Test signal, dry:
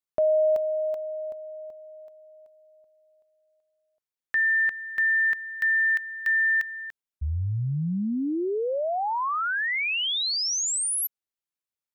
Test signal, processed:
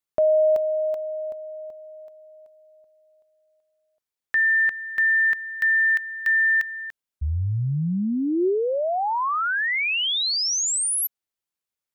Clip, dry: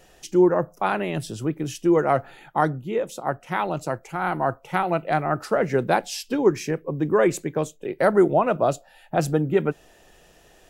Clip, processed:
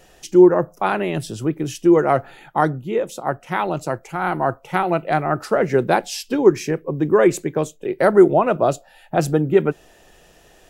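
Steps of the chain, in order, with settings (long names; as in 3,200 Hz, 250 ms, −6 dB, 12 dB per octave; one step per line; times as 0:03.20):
dynamic equaliser 370 Hz, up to +4 dB, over −36 dBFS, Q 4.8
level +3 dB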